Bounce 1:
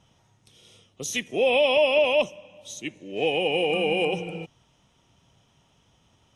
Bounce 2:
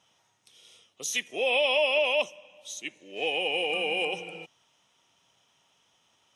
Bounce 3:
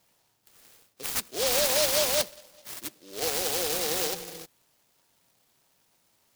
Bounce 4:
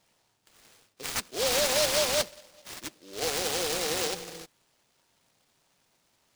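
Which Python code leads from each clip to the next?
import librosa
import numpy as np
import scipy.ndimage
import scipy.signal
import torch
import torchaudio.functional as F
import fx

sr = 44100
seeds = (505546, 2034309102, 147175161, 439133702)

y1 = fx.highpass(x, sr, hz=1000.0, slope=6)
y2 = fx.noise_mod_delay(y1, sr, seeds[0], noise_hz=4400.0, depth_ms=0.2)
y3 = scipy.signal.medfilt(y2, 3)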